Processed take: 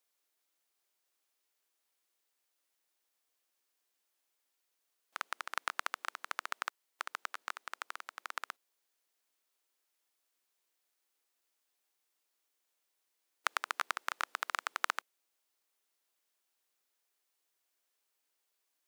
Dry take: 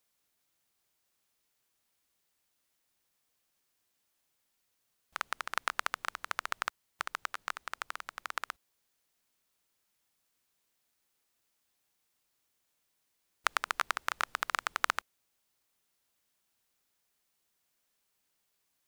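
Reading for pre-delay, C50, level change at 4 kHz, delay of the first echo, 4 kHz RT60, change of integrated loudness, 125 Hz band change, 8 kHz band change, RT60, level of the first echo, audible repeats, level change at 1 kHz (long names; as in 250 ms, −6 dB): no reverb audible, no reverb audible, −3.5 dB, no echo audible, no reverb audible, −3.5 dB, can't be measured, −3.5 dB, no reverb audible, no echo audible, no echo audible, −3.5 dB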